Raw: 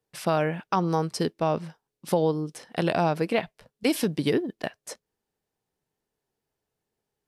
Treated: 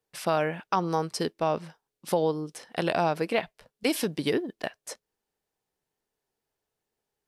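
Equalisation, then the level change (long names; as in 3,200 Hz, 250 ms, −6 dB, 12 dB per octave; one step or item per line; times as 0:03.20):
parametric band 130 Hz −6 dB 2.6 octaves
0.0 dB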